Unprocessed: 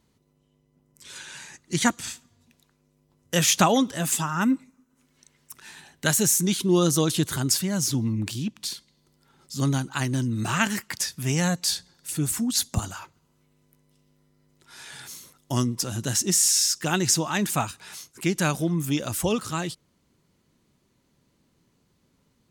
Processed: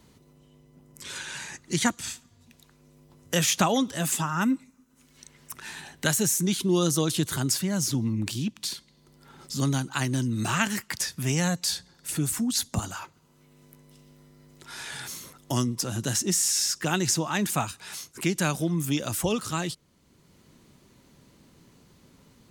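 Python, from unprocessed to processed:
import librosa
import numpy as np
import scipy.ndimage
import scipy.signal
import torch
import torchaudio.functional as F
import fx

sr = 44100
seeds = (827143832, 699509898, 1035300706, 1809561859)

y = fx.band_squash(x, sr, depth_pct=40)
y = F.gain(torch.from_numpy(y), -1.5).numpy()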